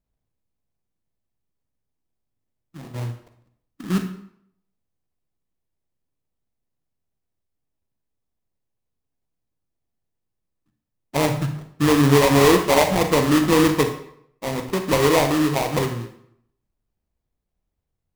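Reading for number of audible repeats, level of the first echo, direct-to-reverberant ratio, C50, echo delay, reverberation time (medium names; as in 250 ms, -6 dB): no echo, no echo, 6.5 dB, 8.5 dB, no echo, 0.70 s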